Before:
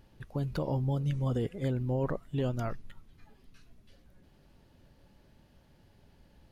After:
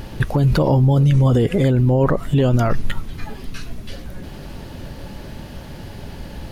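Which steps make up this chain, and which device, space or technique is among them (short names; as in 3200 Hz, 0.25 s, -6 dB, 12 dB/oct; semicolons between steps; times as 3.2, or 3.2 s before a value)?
loud club master (compressor 3:1, threshold -32 dBFS, peak gain reduction 5 dB; hard clip -26 dBFS, distortion -40 dB; maximiser +35 dB); gain -7.5 dB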